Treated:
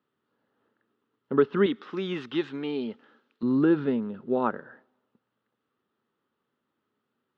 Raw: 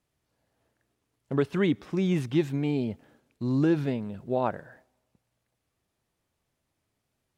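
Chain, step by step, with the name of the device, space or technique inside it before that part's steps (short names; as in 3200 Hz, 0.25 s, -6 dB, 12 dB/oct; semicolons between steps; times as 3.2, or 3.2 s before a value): kitchen radio (speaker cabinet 220–3400 Hz, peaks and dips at 230 Hz +7 dB, 420 Hz +5 dB, 670 Hz -9 dB, 1300 Hz +8 dB, 2300 Hz -9 dB); 1.66–3.43 tilt +3.5 dB/oct; gain +1.5 dB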